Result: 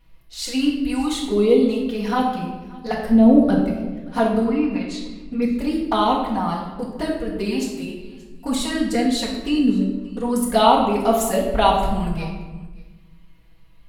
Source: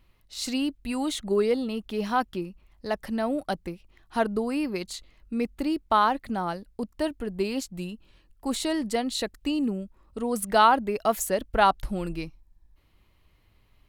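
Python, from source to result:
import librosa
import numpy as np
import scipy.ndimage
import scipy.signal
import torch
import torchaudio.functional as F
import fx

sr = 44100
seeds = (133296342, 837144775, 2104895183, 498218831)

y = fx.tilt_shelf(x, sr, db=7.0, hz=930.0, at=(3.06, 3.64))
y = fx.env_lowpass_down(y, sr, base_hz=2400.0, full_db=-25.5, at=(4.44, 5.42))
y = fx.highpass(y, sr, hz=110.0, slope=12, at=(7.33, 7.83))
y = fx.env_flanger(y, sr, rest_ms=6.4, full_db=-20.5)
y = y + 10.0 ** (-23.0 / 20.0) * np.pad(y, (int(578 * sr / 1000.0), 0))[:len(y)]
y = fx.room_shoebox(y, sr, seeds[0], volume_m3=630.0, walls='mixed', distance_m=1.8)
y = y * 10.0 ** (4.5 / 20.0)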